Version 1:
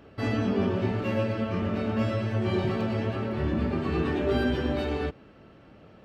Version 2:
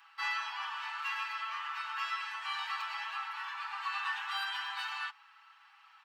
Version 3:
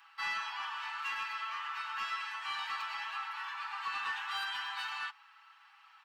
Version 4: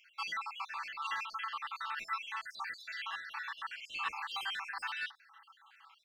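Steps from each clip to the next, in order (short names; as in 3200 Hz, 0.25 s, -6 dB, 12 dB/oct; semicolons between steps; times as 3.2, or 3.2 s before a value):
steep high-pass 840 Hz 96 dB/oct; comb 6.1 ms
soft clip -27 dBFS, distortion -23 dB
random spectral dropouts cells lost 59%; gain +2.5 dB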